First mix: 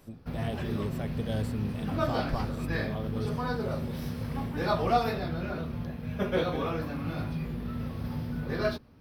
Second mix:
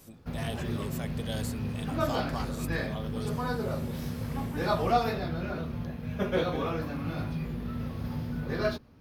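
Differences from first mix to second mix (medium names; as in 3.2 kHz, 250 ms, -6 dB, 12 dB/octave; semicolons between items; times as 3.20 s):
speech: add tilt EQ +3 dB/octave; master: remove band-stop 6.7 kHz, Q 7.5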